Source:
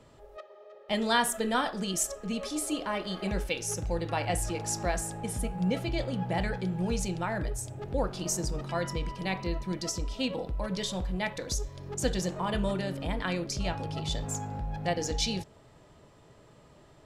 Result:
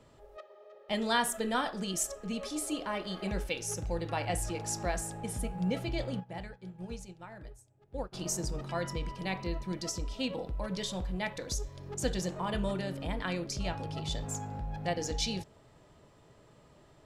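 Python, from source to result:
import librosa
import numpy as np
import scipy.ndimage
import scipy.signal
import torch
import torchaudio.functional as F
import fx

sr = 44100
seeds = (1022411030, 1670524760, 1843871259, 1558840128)

y = fx.upward_expand(x, sr, threshold_db=-39.0, expansion=2.5, at=(6.19, 8.12), fade=0.02)
y = F.gain(torch.from_numpy(y), -3.0).numpy()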